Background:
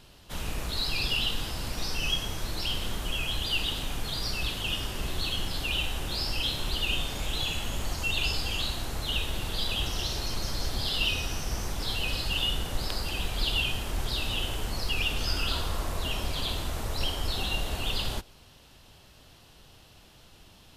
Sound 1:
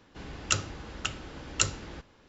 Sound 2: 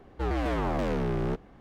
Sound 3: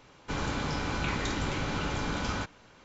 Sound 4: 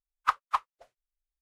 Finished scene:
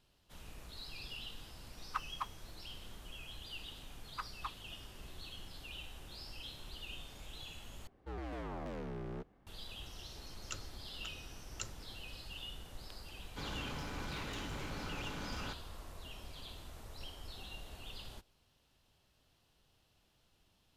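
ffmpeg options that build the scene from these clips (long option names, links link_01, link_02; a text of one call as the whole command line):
ffmpeg -i bed.wav -i cue0.wav -i cue1.wav -i cue2.wav -i cue3.wav -filter_complex "[4:a]asplit=2[link_01][link_02];[0:a]volume=-18.5dB[link_03];[link_01]acrusher=bits=9:mix=0:aa=0.000001[link_04];[link_02]acompressor=threshold=-27dB:ratio=6:attack=3.2:release=140:knee=1:detection=peak[link_05];[3:a]asoftclip=type=hard:threshold=-29.5dB[link_06];[link_03]asplit=2[link_07][link_08];[link_07]atrim=end=7.874[link_09];[2:a]atrim=end=1.6,asetpts=PTS-STARTPTS,volume=-14.5dB[link_10];[link_08]atrim=start=9.466[link_11];[link_04]atrim=end=1.41,asetpts=PTS-STARTPTS,volume=-13.5dB,afade=type=in:duration=0.004:curve=hsin,afade=type=out:start_time=1.406:duration=0.004:curve=hsin,adelay=1670[link_12];[link_05]atrim=end=1.41,asetpts=PTS-STARTPTS,volume=-9.5dB,afade=type=in:duration=0.004:curve=hsin,afade=type=out:start_time=1.406:duration=0.004:curve=hsin,adelay=3910[link_13];[1:a]atrim=end=2.28,asetpts=PTS-STARTPTS,volume=-18dB,afade=type=in:duration=0.004:curve=hsin,afade=type=out:start_time=2.276:duration=0.004:curve=hsin,adelay=10000[link_14];[link_06]atrim=end=2.84,asetpts=PTS-STARTPTS,volume=-10dB,afade=type=in:duration=0.004:curve=hsin,afade=type=out:start_time=2.836:duration=0.004:curve=hsin,adelay=13080[link_15];[link_09][link_10]acrossfade=duration=0.004:curve1=hsin:curve2=hsin[link_16];[link_16][link_11]acrossfade=duration=0.004:curve1=hsin:curve2=hsin[link_17];[link_17][link_12][link_13][link_14][link_15]amix=inputs=5:normalize=0" out.wav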